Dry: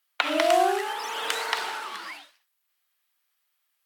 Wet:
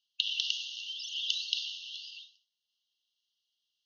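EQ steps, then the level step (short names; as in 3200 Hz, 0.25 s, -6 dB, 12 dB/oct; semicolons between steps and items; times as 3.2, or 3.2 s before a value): brick-wall FIR band-pass 2700–6700 Hz; air absorption 110 m; +4.0 dB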